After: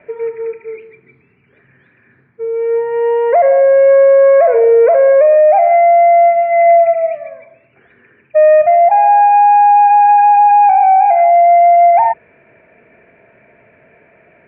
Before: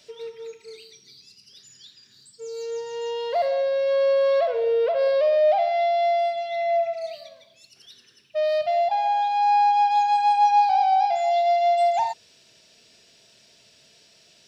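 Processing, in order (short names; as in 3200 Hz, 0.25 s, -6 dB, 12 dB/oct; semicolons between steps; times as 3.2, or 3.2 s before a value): rippled Chebyshev low-pass 2400 Hz, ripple 3 dB; notches 50/100/150/200 Hz; maximiser +19 dB; gain -2.5 dB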